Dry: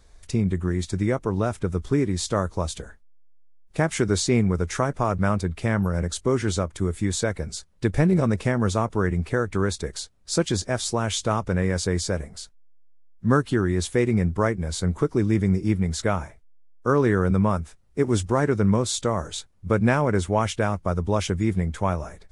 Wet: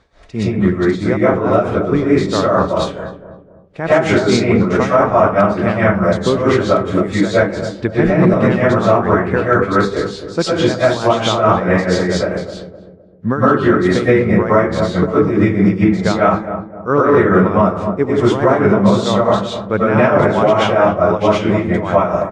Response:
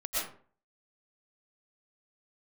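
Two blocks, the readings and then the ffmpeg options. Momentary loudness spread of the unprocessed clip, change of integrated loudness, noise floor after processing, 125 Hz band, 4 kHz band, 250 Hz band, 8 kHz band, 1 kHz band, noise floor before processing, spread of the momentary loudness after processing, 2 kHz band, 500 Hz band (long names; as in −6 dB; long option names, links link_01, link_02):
9 LU, +10.0 dB, −38 dBFS, +5.0 dB, +7.0 dB, +9.5 dB, −2.5 dB, +13.0 dB, −53 dBFS, 8 LU, +11.5 dB, +12.5 dB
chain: -filter_complex "[0:a]highpass=frequency=180:poles=1[link_01];[1:a]atrim=start_sample=2205[link_02];[link_01][link_02]afir=irnorm=-1:irlink=0,tremolo=f=4.6:d=0.67,lowpass=3000,asplit=2[link_03][link_04];[link_04]adelay=257,lowpass=frequency=840:poles=1,volume=-10dB,asplit=2[link_05][link_06];[link_06]adelay=257,lowpass=frequency=840:poles=1,volume=0.44,asplit=2[link_07][link_08];[link_08]adelay=257,lowpass=frequency=840:poles=1,volume=0.44,asplit=2[link_09][link_10];[link_10]adelay=257,lowpass=frequency=840:poles=1,volume=0.44,asplit=2[link_11][link_12];[link_12]adelay=257,lowpass=frequency=840:poles=1,volume=0.44[link_13];[link_03][link_05][link_07][link_09][link_11][link_13]amix=inputs=6:normalize=0,alimiter=level_in=12.5dB:limit=-1dB:release=50:level=0:latency=1,volume=-1dB"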